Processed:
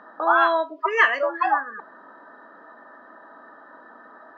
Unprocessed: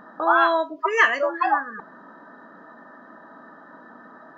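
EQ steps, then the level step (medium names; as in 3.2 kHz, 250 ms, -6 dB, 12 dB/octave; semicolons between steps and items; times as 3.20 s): three-band isolator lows -18 dB, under 290 Hz, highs -21 dB, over 5.2 kHz; 0.0 dB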